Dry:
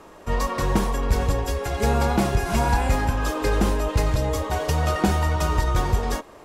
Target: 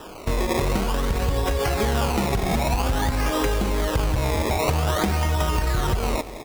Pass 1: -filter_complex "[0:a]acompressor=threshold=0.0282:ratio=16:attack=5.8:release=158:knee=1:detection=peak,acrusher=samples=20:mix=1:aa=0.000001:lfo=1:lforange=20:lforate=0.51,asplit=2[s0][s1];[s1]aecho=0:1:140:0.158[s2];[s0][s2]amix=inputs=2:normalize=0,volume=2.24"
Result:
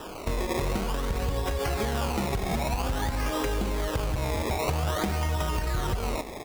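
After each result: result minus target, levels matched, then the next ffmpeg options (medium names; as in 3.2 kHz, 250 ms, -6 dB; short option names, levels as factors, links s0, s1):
echo 67 ms early; compression: peak gain reduction +5.5 dB
-filter_complex "[0:a]acompressor=threshold=0.0282:ratio=16:attack=5.8:release=158:knee=1:detection=peak,acrusher=samples=20:mix=1:aa=0.000001:lfo=1:lforange=20:lforate=0.51,asplit=2[s0][s1];[s1]aecho=0:1:207:0.158[s2];[s0][s2]amix=inputs=2:normalize=0,volume=2.24"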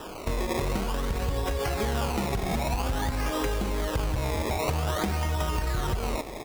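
compression: peak gain reduction +5.5 dB
-filter_complex "[0:a]acompressor=threshold=0.0562:ratio=16:attack=5.8:release=158:knee=1:detection=peak,acrusher=samples=20:mix=1:aa=0.000001:lfo=1:lforange=20:lforate=0.51,asplit=2[s0][s1];[s1]aecho=0:1:207:0.158[s2];[s0][s2]amix=inputs=2:normalize=0,volume=2.24"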